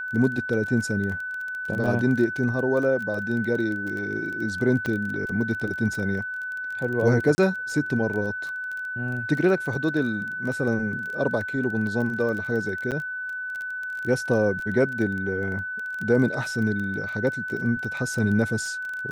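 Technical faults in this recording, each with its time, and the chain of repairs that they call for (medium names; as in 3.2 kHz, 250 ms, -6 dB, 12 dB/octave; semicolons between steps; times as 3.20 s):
crackle 21 per s -30 dBFS
whine 1.5 kHz -29 dBFS
4.86 s: pop -15 dBFS
7.35–7.38 s: dropout 30 ms
12.91–12.92 s: dropout 7.9 ms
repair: de-click; band-stop 1.5 kHz, Q 30; interpolate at 7.35 s, 30 ms; interpolate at 12.91 s, 7.9 ms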